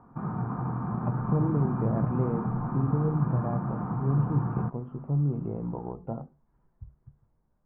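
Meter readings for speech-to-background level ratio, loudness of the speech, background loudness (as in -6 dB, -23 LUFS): 0.5 dB, -31.0 LUFS, -31.5 LUFS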